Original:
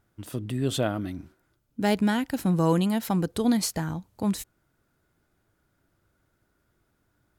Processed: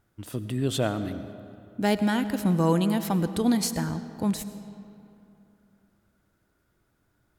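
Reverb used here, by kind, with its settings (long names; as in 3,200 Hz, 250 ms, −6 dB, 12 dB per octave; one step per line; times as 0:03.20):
comb and all-pass reverb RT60 2.8 s, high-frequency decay 0.6×, pre-delay 55 ms, DRR 11.5 dB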